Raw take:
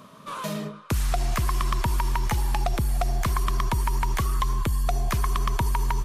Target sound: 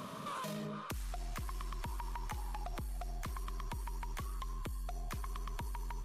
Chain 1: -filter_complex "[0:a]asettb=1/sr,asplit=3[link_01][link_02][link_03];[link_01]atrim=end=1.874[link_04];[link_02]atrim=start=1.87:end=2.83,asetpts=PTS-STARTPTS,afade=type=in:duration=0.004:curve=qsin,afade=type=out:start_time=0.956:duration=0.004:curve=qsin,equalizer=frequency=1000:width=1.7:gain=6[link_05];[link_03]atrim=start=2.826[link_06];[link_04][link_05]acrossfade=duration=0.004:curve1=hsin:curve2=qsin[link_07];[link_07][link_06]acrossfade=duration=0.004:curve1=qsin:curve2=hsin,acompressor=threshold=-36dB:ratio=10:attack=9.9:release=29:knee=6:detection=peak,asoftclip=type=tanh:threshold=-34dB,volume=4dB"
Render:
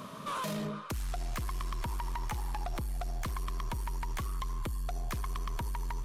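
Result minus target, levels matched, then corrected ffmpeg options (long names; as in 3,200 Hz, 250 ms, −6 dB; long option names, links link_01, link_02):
downward compressor: peak gain reduction −8 dB
-filter_complex "[0:a]asettb=1/sr,asplit=3[link_01][link_02][link_03];[link_01]atrim=end=1.874[link_04];[link_02]atrim=start=1.87:end=2.83,asetpts=PTS-STARTPTS,afade=type=in:duration=0.004:curve=qsin,afade=type=out:start_time=0.956:duration=0.004:curve=qsin,equalizer=frequency=1000:width=1.7:gain=6[link_05];[link_03]atrim=start=2.826[link_06];[link_04][link_05]acrossfade=duration=0.004:curve1=hsin:curve2=qsin[link_07];[link_07][link_06]acrossfade=duration=0.004:curve1=qsin:curve2=hsin,acompressor=threshold=-45dB:ratio=10:attack=9.9:release=29:knee=6:detection=peak,asoftclip=type=tanh:threshold=-34dB,volume=4dB"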